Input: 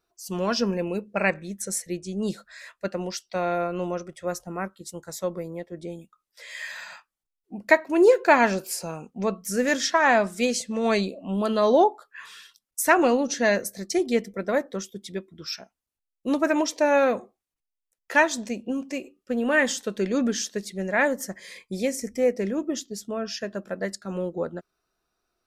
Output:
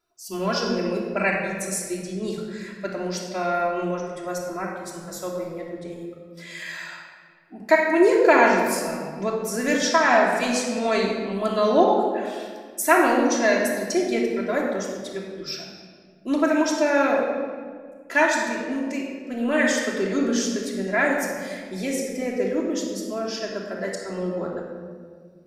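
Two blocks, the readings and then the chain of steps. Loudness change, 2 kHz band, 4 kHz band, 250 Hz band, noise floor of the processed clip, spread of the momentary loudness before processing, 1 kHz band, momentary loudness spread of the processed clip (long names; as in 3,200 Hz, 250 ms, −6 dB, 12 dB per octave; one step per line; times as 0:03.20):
+1.5 dB, +2.0 dB, +1.5 dB, +2.5 dB, −47 dBFS, 17 LU, +2.5 dB, 16 LU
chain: low-shelf EQ 210 Hz −5.5 dB
rectangular room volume 2,400 cubic metres, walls mixed, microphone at 3 metres
level −2 dB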